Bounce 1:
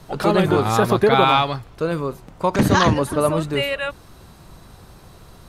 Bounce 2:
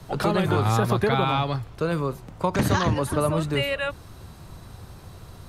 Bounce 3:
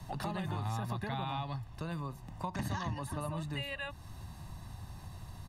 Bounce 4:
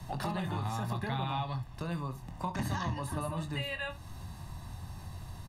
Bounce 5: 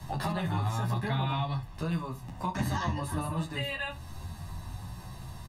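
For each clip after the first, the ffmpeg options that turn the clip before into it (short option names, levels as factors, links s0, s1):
-filter_complex "[0:a]acrossover=split=230|580[s0][s1][s2];[s0]acompressor=threshold=0.0562:ratio=4[s3];[s1]acompressor=threshold=0.0398:ratio=4[s4];[s2]acompressor=threshold=0.0708:ratio=4[s5];[s3][s4][s5]amix=inputs=3:normalize=0,equalizer=f=96:w=1.7:g=7.5,volume=0.891"
-af "aecho=1:1:1.1:0.66,acompressor=threshold=0.0158:ratio=2,volume=0.501"
-af "aecho=1:1:23|69:0.376|0.168,volume=1.26"
-filter_complex "[0:a]asplit=2[s0][s1];[s1]adelay=11.1,afreqshift=0.72[s2];[s0][s2]amix=inputs=2:normalize=1,volume=2"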